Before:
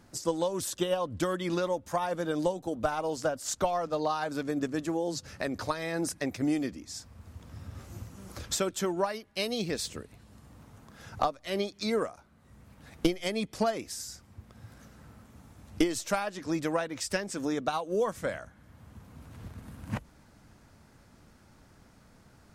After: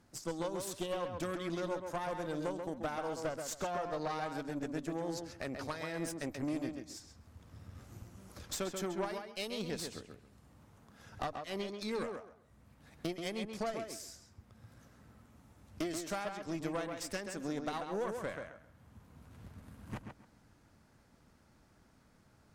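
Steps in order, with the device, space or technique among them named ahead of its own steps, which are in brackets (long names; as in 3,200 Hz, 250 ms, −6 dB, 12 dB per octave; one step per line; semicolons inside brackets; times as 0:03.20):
rockabilly slapback (tube saturation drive 26 dB, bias 0.7; tape delay 134 ms, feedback 24%, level −4 dB, low-pass 2,900 Hz)
level −4.5 dB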